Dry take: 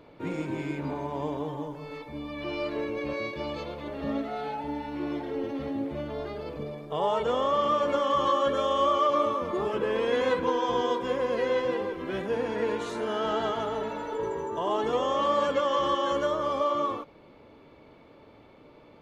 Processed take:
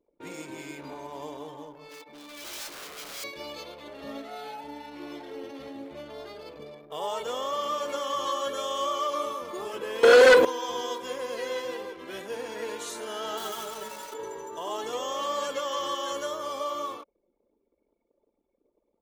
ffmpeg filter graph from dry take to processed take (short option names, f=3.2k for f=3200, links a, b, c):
-filter_complex "[0:a]asettb=1/sr,asplit=3[a][b][c];[a]atrim=end=1.884[d];[b]atrim=start=1.88:end=3.24,asetpts=PTS-STARTPTS,afade=t=in:d=0.004:c=qsin,afade=t=out:st=1.356:d=0.004:c=qsin,highpass=160,aeval=exprs='0.02*(abs(mod(val(0)/0.02+3,4)-2)-1)':c=same[e];[c]atrim=start=3.236[f];[d][e]acrossfade=d=0.004:c1=hsin:c2=qsin[g];[g][f]acrossfade=d=0.004:c1=qsin:c2=hsin,asettb=1/sr,asplit=3[h][i][j];[h]atrim=end=10.034[k];[i]atrim=start=10.03:end=10.45,asetpts=PTS-STARTPTS,afade=t=in:d=0.004:c=qsin,afade=t=out:st=0.416:d=0.004:c=qsin,equalizer=f=520:t=o:w=1.4:g=11.5,aeval=exprs='0.562*sin(PI/2*2.51*val(0)/0.562)':c=same[l];[j]atrim=start=10.446[m];[k][l]acrossfade=d=0.004:c1=hsin:c2=qsin[n];[n][m]acrossfade=d=0.004:c1=qsin:c2=hsin,asettb=1/sr,asplit=3[o][p][q];[o]atrim=end=13.374[r];[p]atrim=start=13.37:end=14.14,asetpts=PTS-STARTPTS,afade=t=in:d=0.004:c=qsin,afade=t=out:st=0.766:d=0.004:c=qsin,aecho=1:1:5.3:0.71,atrim=end_sample=33957,aeval=exprs='sgn(val(0))*max(abs(val(0))-0.00668,0)':c=same[s];[q]atrim=start=14.136[t];[r][s]acrossfade=d=0.004:c1=hsin:c2=qsin[u];[u][t]acrossfade=d=0.004:c1=qsin:c2=hsin,aemphasis=mode=production:type=75fm,anlmdn=0.0631,bass=f=250:g=-10,treble=f=4k:g=5,volume=-5dB"